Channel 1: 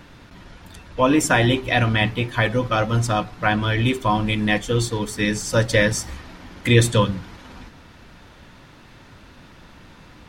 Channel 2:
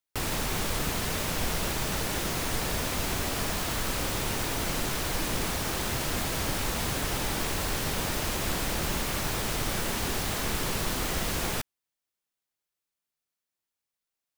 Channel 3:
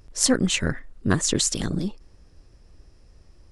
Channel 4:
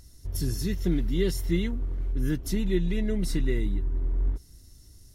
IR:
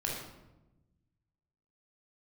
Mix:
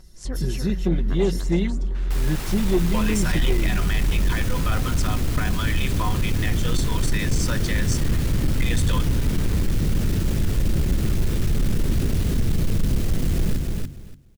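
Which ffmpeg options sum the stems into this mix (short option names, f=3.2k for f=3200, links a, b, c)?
-filter_complex "[0:a]bandpass=f=1.4k:t=q:w=0.82:csg=0,crystalizer=i=5.5:c=0,alimiter=limit=-18dB:level=0:latency=1:release=223,adelay=1950,volume=-0.5dB[a];[1:a]bandreject=f=45.87:t=h:w=4,bandreject=f=91.74:t=h:w=4,bandreject=f=137.61:t=h:w=4,bandreject=f=183.48:t=h:w=4,bandreject=f=229.35:t=h:w=4,bandreject=f=275.22:t=h:w=4,bandreject=f=321.09:t=h:w=4,asubboost=boost=11.5:cutoff=250,asoftclip=type=tanh:threshold=-8.5dB,adelay=1950,volume=-3.5dB,asplit=2[b][c];[c]volume=-4dB[d];[2:a]lowpass=f=3.4k:p=1,volume=-14.5dB,asplit=2[e][f];[f]volume=-5.5dB[g];[3:a]lowpass=f=3.5k:p=1,bandreject=f=60:t=h:w=6,bandreject=f=120:t=h:w=6,bandreject=f=180:t=h:w=6,aecho=1:1:5.4:0.88,volume=3dB[h];[d][g]amix=inputs=2:normalize=0,aecho=0:1:290|580|870:1|0.18|0.0324[i];[a][b][e][h][i]amix=inputs=5:normalize=0,asoftclip=type=tanh:threshold=-12dB"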